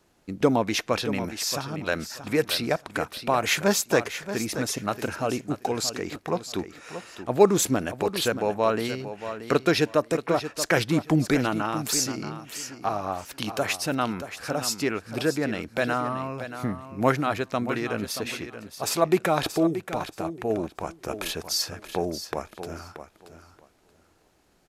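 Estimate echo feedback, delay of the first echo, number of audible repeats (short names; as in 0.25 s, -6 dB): 19%, 0.629 s, 2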